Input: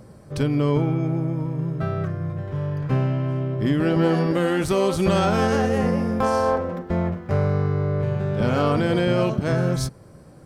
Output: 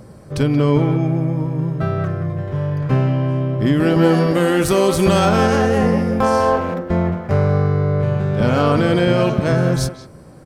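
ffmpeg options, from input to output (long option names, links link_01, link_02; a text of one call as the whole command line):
ffmpeg -i in.wav -filter_complex "[0:a]asettb=1/sr,asplit=3[link_01][link_02][link_03];[link_01]atrim=end=3.764[link_04];[link_02]atrim=start=3.76:end=5.29,asetpts=PTS-STARTPTS,afade=type=in:duration=0.004:curve=qsin,afade=type=out:start_time=1.526:duration=0.004:curve=qsin,highshelf=frequency=8600:gain=9.5[link_05];[link_03]atrim=start=5.286[link_06];[link_04][link_05]acrossfade=duration=0.004:curve1=hsin:curve2=qsin[link_07];[link_07][link_06]acrossfade=duration=0.004:curve1=qsin:curve2=hsin,asplit=2[link_08][link_09];[link_09]adelay=180,highpass=300,lowpass=3400,asoftclip=type=hard:threshold=-18dB,volume=-9dB[link_10];[link_08][link_10]amix=inputs=2:normalize=0,volume=5dB" out.wav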